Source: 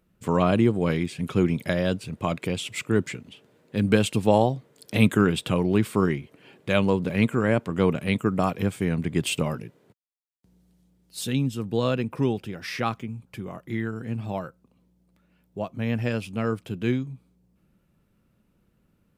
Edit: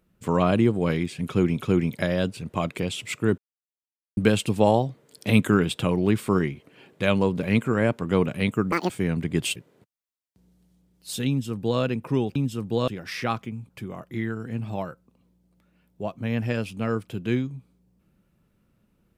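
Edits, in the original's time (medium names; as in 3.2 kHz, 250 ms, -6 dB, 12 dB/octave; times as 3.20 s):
1.27–1.60 s: loop, 2 plays
3.05–3.84 s: mute
8.39–8.71 s: speed 181%
9.37–9.64 s: delete
11.37–11.89 s: copy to 12.44 s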